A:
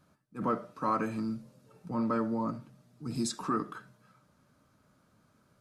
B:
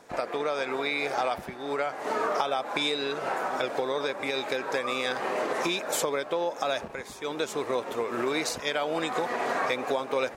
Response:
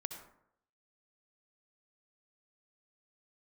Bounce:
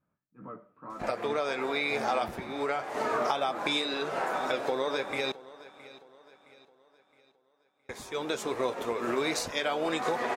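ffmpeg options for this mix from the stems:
-filter_complex "[0:a]lowpass=frequency=2500:width=0.5412,lowpass=frequency=2500:width=1.3066,flanger=delay=15:depth=5.6:speed=2.1,volume=-11dB,asplit=2[link_01][link_02];[link_02]volume=-17dB[link_03];[1:a]lowshelf=frequency=63:gain=7.5,flanger=delay=8.1:depth=3.9:regen=-61:speed=0.43:shape=sinusoidal,adelay=900,volume=3dB,asplit=3[link_04][link_05][link_06];[link_04]atrim=end=5.32,asetpts=PTS-STARTPTS,afade=type=out:start_time=5.316:duration=0.004:curve=hsin[link_07];[link_05]atrim=start=5.32:end=7.89,asetpts=PTS-STARTPTS,volume=0[link_08];[link_06]atrim=start=7.89,asetpts=PTS-STARTPTS,afade=type=in:duration=0.004:curve=hsin[link_09];[link_07][link_08][link_09]concat=n=3:v=0:a=1,asplit=2[link_10][link_11];[link_11]volume=-19dB[link_12];[2:a]atrim=start_sample=2205[link_13];[link_03][link_13]afir=irnorm=-1:irlink=0[link_14];[link_12]aecho=0:1:666|1332|1998|2664|3330|3996:1|0.43|0.185|0.0795|0.0342|0.0147[link_15];[link_01][link_10][link_14][link_15]amix=inputs=4:normalize=0"

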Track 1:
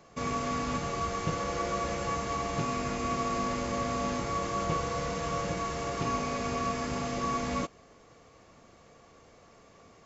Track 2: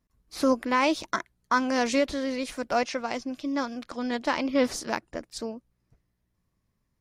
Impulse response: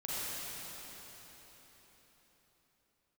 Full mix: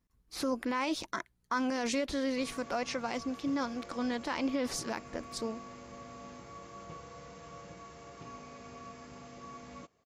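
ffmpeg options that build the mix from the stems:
-filter_complex "[0:a]highpass=59,adelay=2200,volume=-16.5dB[link_01];[1:a]bandreject=frequency=620:width=12,volume=-2.5dB[link_02];[link_01][link_02]amix=inputs=2:normalize=0,alimiter=limit=-23dB:level=0:latency=1:release=34"

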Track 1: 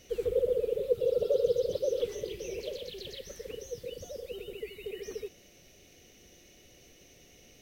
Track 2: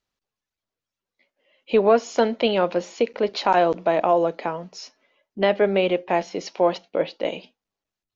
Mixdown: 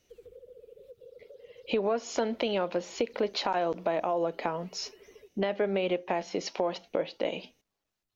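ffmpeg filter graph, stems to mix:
ffmpeg -i stem1.wav -i stem2.wav -filter_complex "[0:a]acompressor=threshold=-33dB:ratio=10,volume=-14dB[link_01];[1:a]alimiter=limit=-12.5dB:level=0:latency=1:release=156,volume=2dB[link_02];[link_01][link_02]amix=inputs=2:normalize=0,acompressor=threshold=-29dB:ratio=2.5" out.wav

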